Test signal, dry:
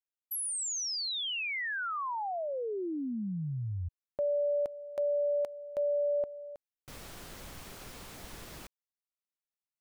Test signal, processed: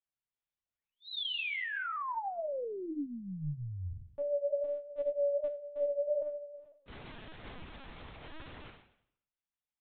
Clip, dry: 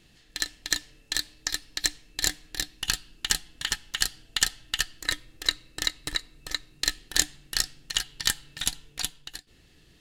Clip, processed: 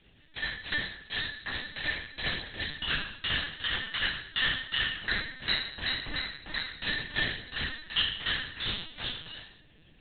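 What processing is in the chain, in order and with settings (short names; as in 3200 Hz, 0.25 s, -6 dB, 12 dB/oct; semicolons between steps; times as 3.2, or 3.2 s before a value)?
spectral trails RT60 0.69 s; chorus voices 2, 1 Hz, delay 24 ms, depth 3.4 ms; LPC vocoder at 8 kHz pitch kept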